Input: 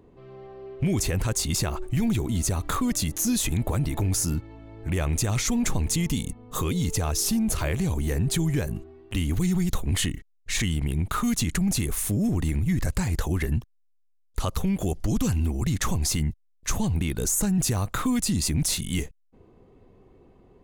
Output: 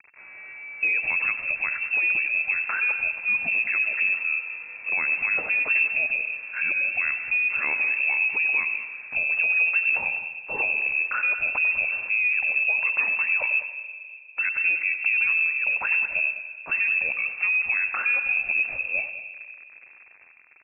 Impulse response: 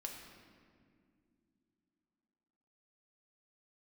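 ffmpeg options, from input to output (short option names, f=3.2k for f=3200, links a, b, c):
-filter_complex "[0:a]acrusher=bits=7:mix=0:aa=0.000001,aecho=1:1:199:0.2,asplit=2[a][b];[1:a]atrim=start_sample=2205,adelay=95[c];[b][c]afir=irnorm=-1:irlink=0,volume=-8dB[d];[a][d]amix=inputs=2:normalize=0,lowpass=f=2.3k:t=q:w=0.5098,lowpass=f=2.3k:t=q:w=0.6013,lowpass=f=2.3k:t=q:w=0.9,lowpass=f=2.3k:t=q:w=2.563,afreqshift=-2700"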